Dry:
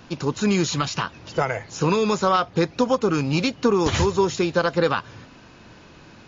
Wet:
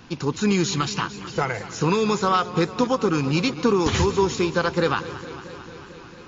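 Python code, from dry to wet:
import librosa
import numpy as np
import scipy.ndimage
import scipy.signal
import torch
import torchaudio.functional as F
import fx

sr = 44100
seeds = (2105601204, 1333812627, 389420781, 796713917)

y = fx.peak_eq(x, sr, hz=610.0, db=-10.0, octaves=0.26)
y = fx.echo_warbled(y, sr, ms=224, feedback_pct=76, rate_hz=2.8, cents=96, wet_db=-15.5)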